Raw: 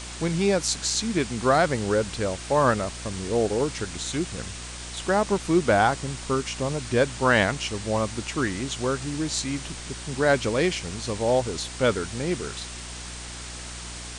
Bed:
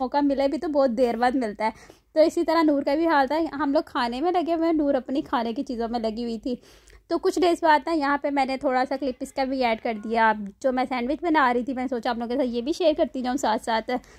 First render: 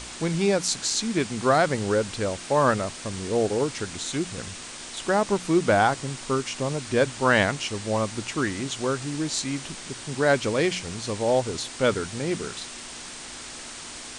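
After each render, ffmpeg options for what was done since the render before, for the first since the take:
-af "bandreject=f=60:t=h:w=4,bandreject=f=120:t=h:w=4,bandreject=f=180:t=h:w=4"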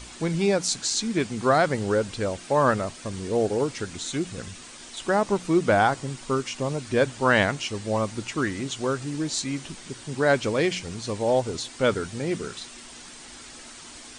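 -af "afftdn=nr=7:nf=-39"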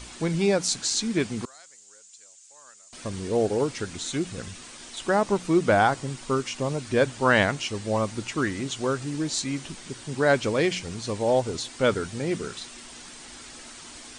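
-filter_complex "[0:a]asettb=1/sr,asplit=3[s0][s1][s2];[s0]atrim=end=1.454[s3];[s1]atrim=start=1.45:end=2.93,asetpts=PTS-STARTPTS,afade=t=in:d=0.004:c=qsin,afade=t=out:st=1.476:d=0.004:c=qsin,bandpass=f=7100:t=q:w=5.6[s4];[s2]atrim=start=2.926[s5];[s3][s4]acrossfade=d=0.004:c1=hsin:c2=qsin[s6];[s6][s5]acrossfade=d=0.004:c1=qsin:c2=hsin"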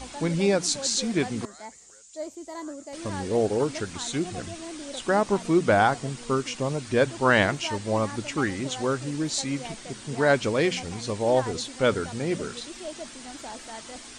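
-filter_complex "[1:a]volume=0.141[s0];[0:a][s0]amix=inputs=2:normalize=0"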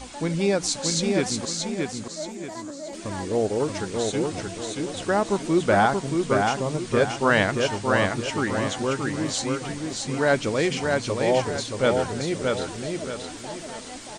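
-af "aecho=1:1:627|1254|1881|2508|3135:0.668|0.241|0.0866|0.0312|0.0112"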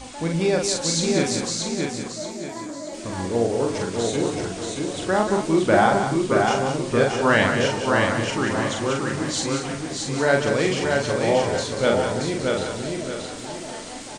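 -filter_complex "[0:a]asplit=2[s0][s1];[s1]adelay=43,volume=0.668[s2];[s0][s2]amix=inputs=2:normalize=0,aecho=1:1:184:0.398"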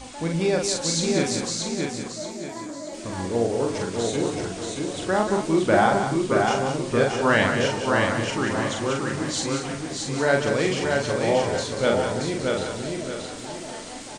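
-af "volume=0.841"

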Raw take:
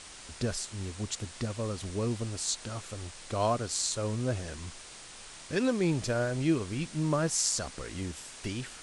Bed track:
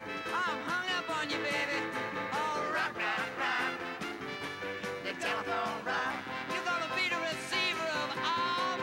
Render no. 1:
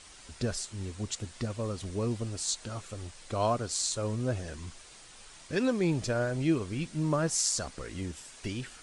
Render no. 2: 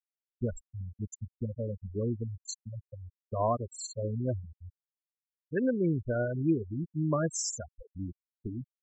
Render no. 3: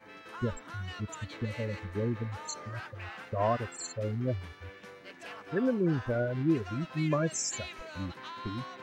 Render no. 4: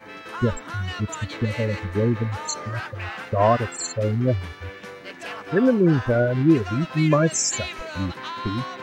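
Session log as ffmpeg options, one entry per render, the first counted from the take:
-af "afftdn=nr=6:nf=-48"
-af "agate=range=0.0224:threshold=0.0112:ratio=3:detection=peak,afftfilt=real='re*gte(hypot(re,im),0.0794)':imag='im*gte(hypot(re,im),0.0794)':win_size=1024:overlap=0.75"
-filter_complex "[1:a]volume=0.266[s0];[0:a][s0]amix=inputs=2:normalize=0"
-af "volume=3.35"

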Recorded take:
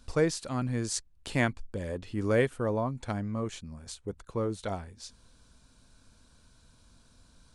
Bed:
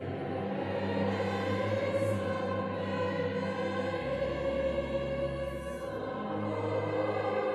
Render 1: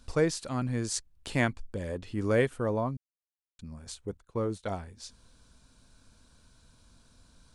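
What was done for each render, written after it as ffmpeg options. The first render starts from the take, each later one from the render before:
-filter_complex "[0:a]asettb=1/sr,asplit=3[s0][s1][s2];[s0]atrim=end=4.174[s3];[s1]atrim=start=4.17:end=4.76,asetpts=PTS-STARTPTS,afade=t=in:d=0.004:c=qsin,afade=t=out:st=0.586:d=0.004:c=qsin,agate=range=0.251:threshold=0.00631:ratio=16:release=100:detection=peak[s4];[s2]atrim=start=4.756[s5];[s3][s4]acrossfade=d=0.004:c1=hsin:c2=qsin[s6];[s6][s5]acrossfade=d=0.004:c1=qsin:c2=hsin,asplit=3[s7][s8][s9];[s7]atrim=end=2.97,asetpts=PTS-STARTPTS,afade=t=out:st=2.966:d=0.004:c=hsin[s10];[s8]atrim=start=2.97:end=3.59,asetpts=PTS-STARTPTS,volume=0[s11];[s9]atrim=start=3.59,asetpts=PTS-STARTPTS,afade=t=in:d=0.004:c=hsin[s12];[s10][s11][s12]concat=n=3:v=0:a=1"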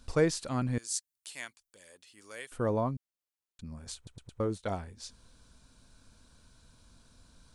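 -filter_complex "[0:a]asettb=1/sr,asplit=3[s0][s1][s2];[s0]atrim=end=0.784[s3];[s1]atrim=start=0.78:end=2.52,asetpts=PTS-STARTPTS,afade=t=in:d=0.004:c=qsin,afade=t=out:st=1.736:d=0.004:c=qsin,aderivative[s4];[s2]atrim=start=2.516[s5];[s3][s4]acrossfade=d=0.004:c1=hsin:c2=qsin[s6];[s6][s5]acrossfade=d=0.004:c1=qsin:c2=hsin,asplit=5[s7][s8][s9][s10][s11];[s7]atrim=end=4.072[s12];[s8]atrim=start=3.958:end=4.072[s13];[s9]atrim=start=3.958:end=4.072[s14];[s10]atrim=start=3.958:end=4.072[s15];[s11]atrim=start=4.398[s16];[s12][s13]acrossfade=d=0.004:c1=hsin:c2=hsin[s17];[s17][s14]acrossfade=d=0.004:c1=hsin:c2=hsin[s18];[s18][s15]acrossfade=d=0.004:c1=hsin:c2=hsin[s19];[s19][s16]acrossfade=d=0.004:c1=hsin:c2=hsin"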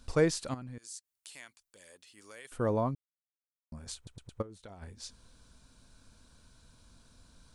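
-filter_complex "[0:a]asettb=1/sr,asplit=3[s0][s1][s2];[s0]atrim=end=0.544[s3];[s1]atrim=start=0.54:end=2.45,asetpts=PTS-STARTPTS,afade=t=in:d=0.004:c=qsin,afade=t=out:st=1.906:d=0.004:c=qsin,acompressor=threshold=0.00447:ratio=2.5:attack=3.2:release=140:knee=1:detection=peak[s4];[s2]atrim=start=2.446[s5];[s3][s4]acrossfade=d=0.004:c1=hsin:c2=qsin[s6];[s6][s5]acrossfade=d=0.004:c1=qsin:c2=hsin,asplit=3[s7][s8][s9];[s7]afade=t=out:st=4.41:d=0.02[s10];[s8]acompressor=threshold=0.00501:ratio=8:attack=3.2:release=140:knee=1:detection=peak,afade=t=in:st=4.41:d=0.02,afade=t=out:st=4.81:d=0.02[s11];[s9]afade=t=in:st=4.81:d=0.02[s12];[s10][s11][s12]amix=inputs=3:normalize=0,asplit=3[s13][s14][s15];[s13]atrim=end=2.95,asetpts=PTS-STARTPTS,afade=t=out:st=2.946:d=0.004:c=hsin[s16];[s14]atrim=start=2.95:end=3.72,asetpts=PTS-STARTPTS,volume=0[s17];[s15]atrim=start=3.72,asetpts=PTS-STARTPTS,afade=t=in:d=0.004:c=hsin[s18];[s16][s17][s18]concat=n=3:v=0:a=1"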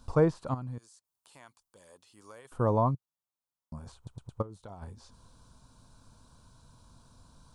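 -filter_complex "[0:a]acrossover=split=2500[s0][s1];[s1]acompressor=threshold=0.00141:ratio=4:attack=1:release=60[s2];[s0][s2]amix=inputs=2:normalize=0,equalizer=f=125:t=o:w=1:g=7,equalizer=f=1000:t=o:w=1:g=10,equalizer=f=2000:t=o:w=1:g=-10"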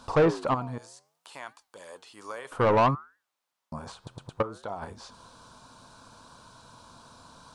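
-filter_complex "[0:a]flanger=delay=4.9:depth=8.8:regen=-89:speed=0.63:shape=triangular,asplit=2[s0][s1];[s1]highpass=f=720:p=1,volume=20,asoftclip=type=tanh:threshold=0.266[s2];[s0][s2]amix=inputs=2:normalize=0,lowpass=f=2900:p=1,volume=0.501"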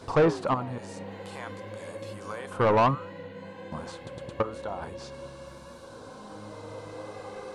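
-filter_complex "[1:a]volume=0.335[s0];[0:a][s0]amix=inputs=2:normalize=0"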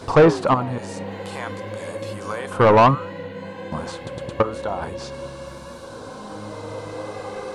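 -af "volume=2.66"

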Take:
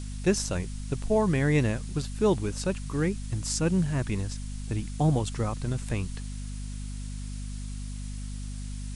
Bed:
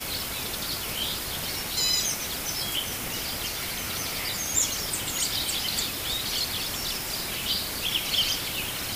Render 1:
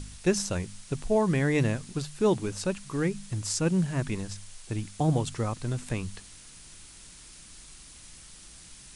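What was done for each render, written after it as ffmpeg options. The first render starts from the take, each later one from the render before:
-af "bandreject=f=50:t=h:w=4,bandreject=f=100:t=h:w=4,bandreject=f=150:t=h:w=4,bandreject=f=200:t=h:w=4,bandreject=f=250:t=h:w=4"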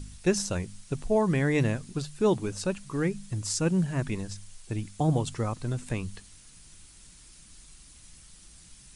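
-af "afftdn=nr=6:nf=-50"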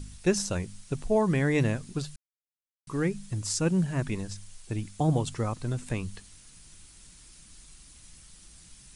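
-filter_complex "[0:a]asplit=3[s0][s1][s2];[s0]atrim=end=2.16,asetpts=PTS-STARTPTS,afade=t=out:st=2.156:d=0.004:c=hsin[s3];[s1]atrim=start=2.16:end=2.87,asetpts=PTS-STARTPTS,volume=0[s4];[s2]atrim=start=2.87,asetpts=PTS-STARTPTS,afade=t=in:d=0.004:c=hsin[s5];[s3][s4][s5]concat=n=3:v=0:a=1"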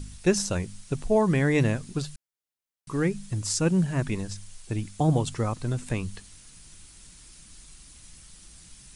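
-af "volume=1.33"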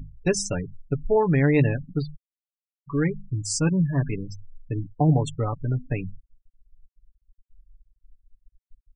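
-af "afftfilt=real='re*gte(hypot(re,im),0.0355)':imag='im*gte(hypot(re,im),0.0355)':win_size=1024:overlap=0.75,aecho=1:1:7:0.62"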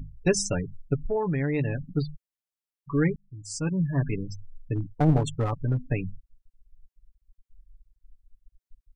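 -filter_complex "[0:a]asplit=3[s0][s1][s2];[s0]afade=t=out:st=0.95:d=0.02[s3];[s1]acompressor=threshold=0.0501:ratio=2.5:attack=3.2:release=140:knee=1:detection=peak,afade=t=in:st=0.95:d=0.02,afade=t=out:st=1.96:d=0.02[s4];[s2]afade=t=in:st=1.96:d=0.02[s5];[s3][s4][s5]amix=inputs=3:normalize=0,asplit=3[s6][s7][s8];[s6]afade=t=out:st=4.75:d=0.02[s9];[s7]aeval=exprs='clip(val(0),-1,0.0708)':c=same,afade=t=in:st=4.75:d=0.02,afade=t=out:st=5.78:d=0.02[s10];[s8]afade=t=in:st=5.78:d=0.02[s11];[s9][s10][s11]amix=inputs=3:normalize=0,asplit=2[s12][s13];[s12]atrim=end=3.16,asetpts=PTS-STARTPTS,afade=t=out:st=3.156:d=0.004:c=hsin[s14];[s13]atrim=start=3.16,asetpts=PTS-STARTPTS,afade=t=in:d=1.02[s15];[s14][s15]concat=n=2:v=0:a=1"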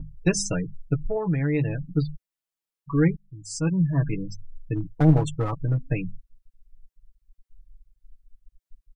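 -af "aecho=1:1:6.2:0.64,adynamicequalizer=threshold=0.00562:dfrequency=2000:dqfactor=0.7:tfrequency=2000:tqfactor=0.7:attack=5:release=100:ratio=0.375:range=2:mode=cutabove:tftype=highshelf"

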